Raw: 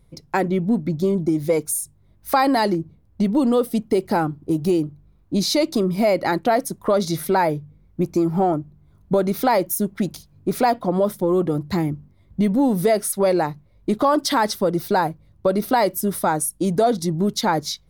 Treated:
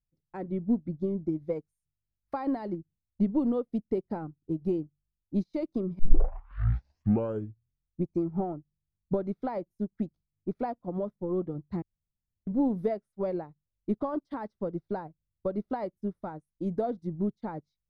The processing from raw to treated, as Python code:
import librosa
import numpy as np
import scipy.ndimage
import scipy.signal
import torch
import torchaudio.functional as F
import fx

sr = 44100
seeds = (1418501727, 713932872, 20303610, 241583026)

y = fx.edit(x, sr, fx.tape_start(start_s=5.99, length_s=2.04),
    fx.room_tone_fill(start_s=11.82, length_s=0.65), tone=tone)
y = fx.lowpass(y, sr, hz=1900.0, slope=6)
y = fx.tilt_eq(y, sr, slope=-2.5)
y = fx.upward_expand(y, sr, threshold_db=-32.0, expansion=2.5)
y = y * librosa.db_to_amplitude(-2.5)